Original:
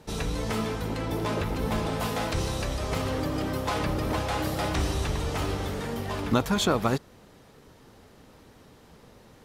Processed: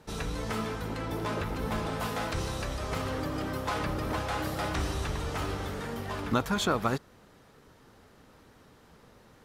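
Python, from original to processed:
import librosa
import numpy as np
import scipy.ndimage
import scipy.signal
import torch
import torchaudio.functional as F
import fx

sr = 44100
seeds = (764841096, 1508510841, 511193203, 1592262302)

y = fx.peak_eq(x, sr, hz=1400.0, db=4.5, octaves=0.91)
y = y * librosa.db_to_amplitude(-4.5)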